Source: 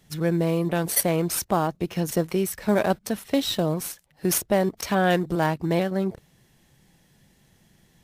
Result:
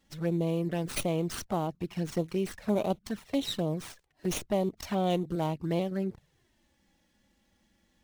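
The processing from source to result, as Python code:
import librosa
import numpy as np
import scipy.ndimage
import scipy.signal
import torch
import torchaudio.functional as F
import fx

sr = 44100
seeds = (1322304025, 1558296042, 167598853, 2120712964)

y = fx.env_flanger(x, sr, rest_ms=3.7, full_db=-19.0)
y = fx.running_max(y, sr, window=3)
y = y * 10.0 ** (-5.5 / 20.0)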